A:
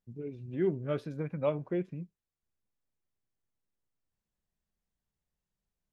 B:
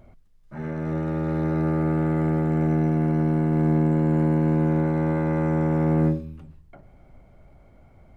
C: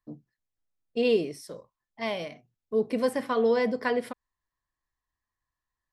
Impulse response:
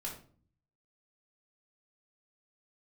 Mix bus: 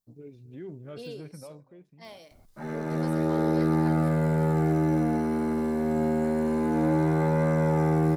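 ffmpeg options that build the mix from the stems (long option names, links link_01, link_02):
-filter_complex "[0:a]alimiter=level_in=3.5dB:limit=-24dB:level=0:latency=1:release=20,volume=-3.5dB,volume=-5.5dB,afade=type=out:start_time=1.27:duration=0.4:silence=0.298538,asplit=2[link_01][link_02];[link_02]volume=-22dB[link_03];[1:a]adelay=2050,volume=-0.5dB,asplit=2[link_04][link_05];[link_05]volume=-5.5dB[link_06];[2:a]alimiter=limit=-16.5dB:level=0:latency=1:release=472,deesser=0.9,volume=-16dB[link_07];[link_04][link_07]amix=inputs=2:normalize=0,highpass=200,alimiter=limit=-18.5dB:level=0:latency=1,volume=0dB[link_08];[link_03][link_06]amix=inputs=2:normalize=0,aecho=0:1:264:1[link_09];[link_01][link_08][link_09]amix=inputs=3:normalize=0,equalizer=frequency=810:width_type=o:width=0.36:gain=2.5,aexciter=amount=1.6:drive=9.2:freq=3800"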